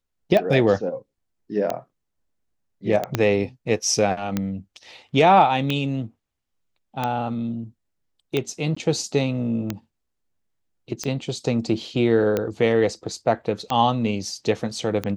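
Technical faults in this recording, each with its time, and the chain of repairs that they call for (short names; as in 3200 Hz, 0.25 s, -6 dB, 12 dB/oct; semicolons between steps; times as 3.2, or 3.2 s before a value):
tick 45 rpm -10 dBFS
3.15 pop -7 dBFS
8.75–8.77 gap 15 ms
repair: de-click; interpolate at 8.75, 15 ms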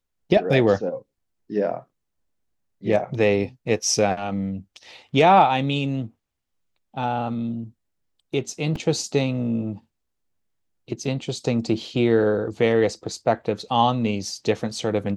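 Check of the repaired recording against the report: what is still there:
3.15 pop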